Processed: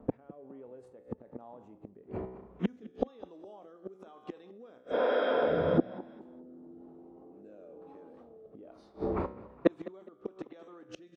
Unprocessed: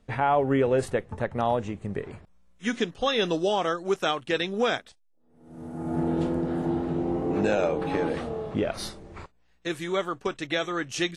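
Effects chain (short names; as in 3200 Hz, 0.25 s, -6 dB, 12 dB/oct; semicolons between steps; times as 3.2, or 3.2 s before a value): low shelf 110 Hz +8 dB; resonator 63 Hz, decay 0.74 s, harmonics all, mix 60%; low-pass opened by the level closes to 1400 Hz, open at -27.5 dBFS; spectral repair 4.88–5.75, 210–5500 Hz before; in parallel at +2 dB: negative-ratio compressor -37 dBFS, ratio -1; on the sum: flipped gate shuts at -21 dBFS, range -35 dB; HPF 43 Hz; on a send: frequency-shifting echo 0.206 s, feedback 32%, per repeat +30 Hz, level -18.5 dB; on the sum: rotary speaker horn 1.1 Hz; band shelf 510 Hz +13.5 dB 2.9 oct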